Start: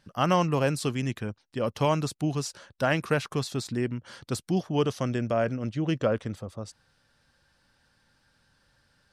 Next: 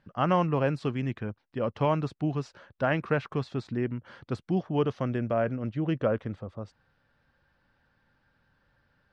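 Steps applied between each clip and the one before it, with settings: low-pass 2.3 kHz 12 dB/octave; trim -1 dB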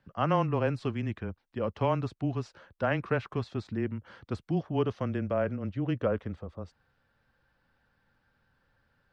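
frequency shift -15 Hz; trim -2 dB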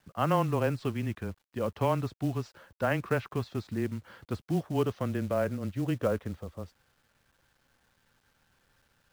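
companded quantiser 6-bit

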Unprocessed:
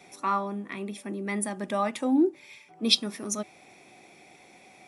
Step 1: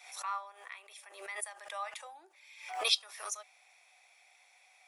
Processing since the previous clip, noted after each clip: Bessel high-pass 1.1 kHz, order 8; swell ahead of each attack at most 84 dB/s; trim -7 dB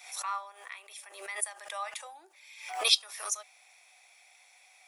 treble shelf 4.6 kHz +6.5 dB; trim +2 dB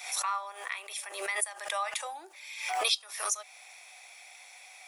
compression 3:1, threshold -38 dBFS, peak gain reduction 15 dB; trim +8.5 dB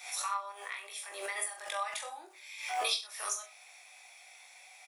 reverse bouncing-ball echo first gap 20 ms, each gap 1.1×, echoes 5; trim -6 dB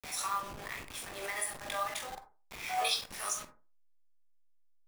send-on-delta sampling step -39 dBFS; on a send at -9 dB: reverberation RT60 0.35 s, pre-delay 37 ms

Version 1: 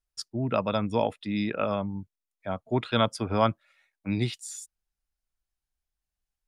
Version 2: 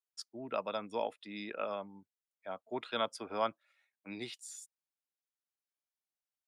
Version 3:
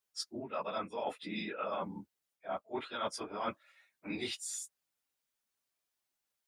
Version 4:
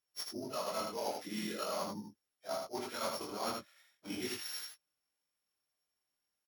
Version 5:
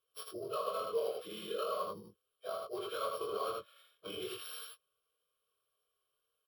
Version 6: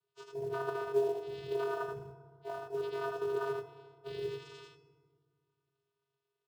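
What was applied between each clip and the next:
high-pass 360 Hz 12 dB/octave; trim -8.5 dB
phase randomisation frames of 50 ms; dynamic bell 1.3 kHz, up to +4 dB, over -47 dBFS, Q 1.3; reverse; compression 10:1, threshold -42 dBFS, peak gain reduction 16 dB; reverse; trim +8 dB
sorted samples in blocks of 8 samples; chorus 0.43 Hz, delay 17.5 ms, depth 7 ms; delay 79 ms -4.5 dB; trim +1.5 dB
compression 3:1, threshold -44 dBFS, peak gain reduction 9 dB; static phaser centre 1.3 kHz, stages 8; small resonant body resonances 450/1100/3100 Hz, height 13 dB, ringing for 30 ms; trim +4 dB
vocoder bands 8, square 136 Hz; in parallel at -7 dB: short-mantissa float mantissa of 2-bit; on the sum: FDN reverb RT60 1.9 s, low-frequency decay 1.35×, high-frequency decay 0.45×, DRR 9.5 dB

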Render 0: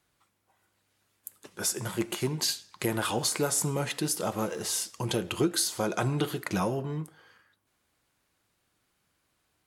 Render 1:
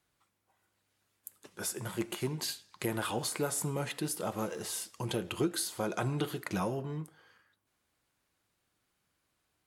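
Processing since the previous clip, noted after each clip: dynamic bell 5.9 kHz, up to -6 dB, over -44 dBFS, Q 1.4; trim -4.5 dB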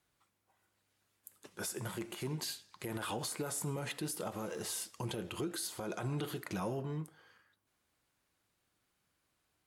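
peak limiter -28 dBFS, peak gain reduction 8.5 dB; trim -1 dB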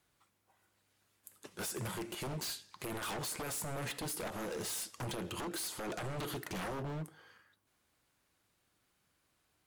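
wavefolder -37 dBFS; trim +3 dB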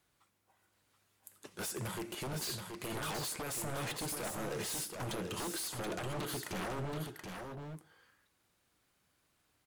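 delay 728 ms -5.5 dB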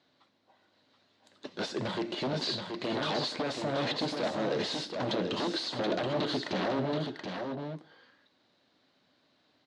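cabinet simulation 160–4800 Hz, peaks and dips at 260 Hz +8 dB, 600 Hz +6 dB, 1.3 kHz -4 dB, 2.4 kHz -4 dB, 4 kHz +7 dB; trim +7 dB

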